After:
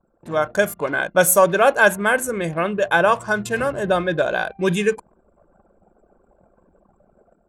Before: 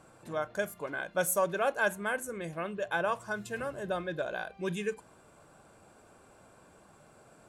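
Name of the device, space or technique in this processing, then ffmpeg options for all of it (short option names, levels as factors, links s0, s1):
voice memo with heavy noise removal: -af "anlmdn=0.00398,dynaudnorm=f=120:g=5:m=3.16,volume=1.68"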